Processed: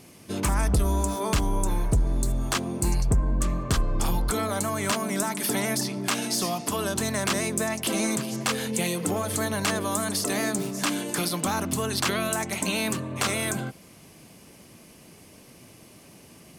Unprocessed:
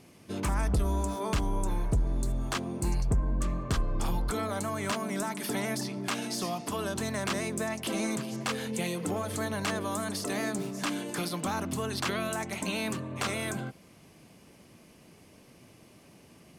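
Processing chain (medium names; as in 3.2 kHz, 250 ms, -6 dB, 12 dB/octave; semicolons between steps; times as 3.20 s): treble shelf 5.8 kHz +7.5 dB; trim +4.5 dB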